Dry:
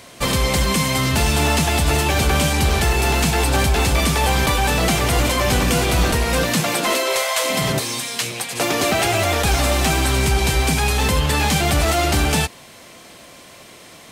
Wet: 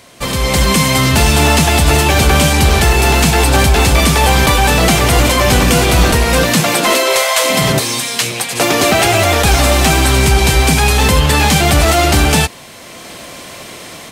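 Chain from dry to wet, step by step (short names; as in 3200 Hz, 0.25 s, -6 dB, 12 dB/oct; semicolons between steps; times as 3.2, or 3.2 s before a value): AGC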